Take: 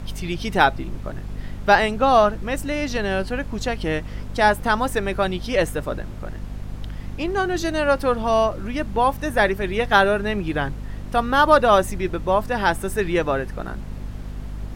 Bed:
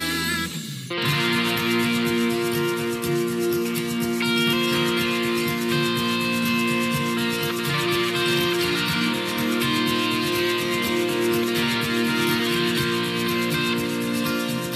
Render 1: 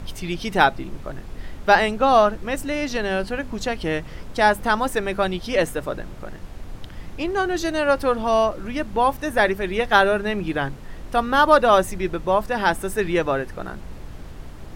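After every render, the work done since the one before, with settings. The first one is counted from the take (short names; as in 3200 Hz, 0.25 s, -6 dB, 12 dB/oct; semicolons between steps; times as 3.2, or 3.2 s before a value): de-hum 50 Hz, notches 5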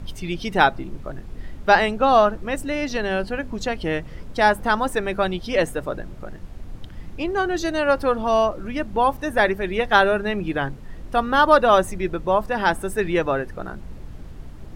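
denoiser 6 dB, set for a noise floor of -38 dBFS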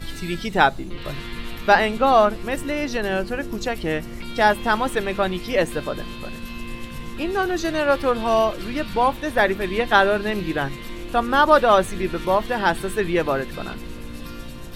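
add bed -14 dB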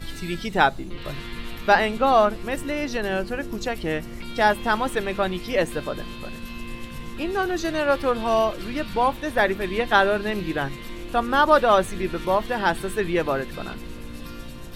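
gain -2 dB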